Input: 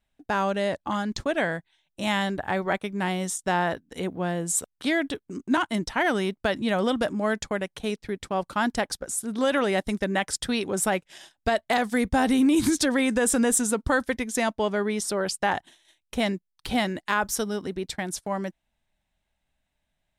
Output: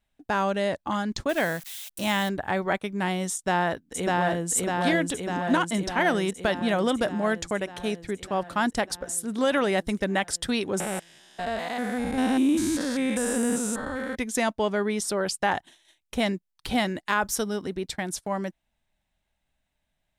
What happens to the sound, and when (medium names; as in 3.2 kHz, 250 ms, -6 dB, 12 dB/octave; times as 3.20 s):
1.29–2.29 s: zero-crossing glitches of -29.5 dBFS
3.34–4.50 s: echo throw 600 ms, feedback 70%, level -1 dB
10.80–14.16 s: spectrogram pixelated in time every 200 ms